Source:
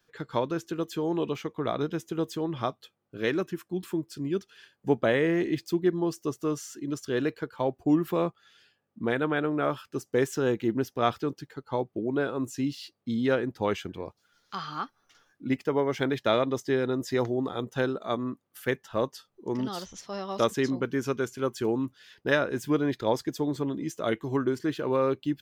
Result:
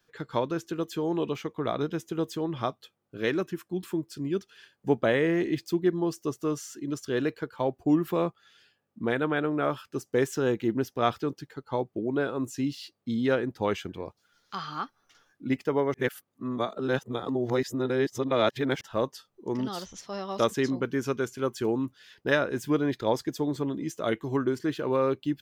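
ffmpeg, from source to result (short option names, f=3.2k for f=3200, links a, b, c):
-filter_complex "[0:a]asplit=3[a][b][c];[a]atrim=end=15.942[d];[b]atrim=start=15.938:end=18.812,asetpts=PTS-STARTPTS,areverse[e];[c]atrim=start=18.808[f];[d][e]acrossfade=d=0.004:c1=hsin:c2=hsin[g];[g][f]acrossfade=d=0.004:c1=hsin:c2=hsin"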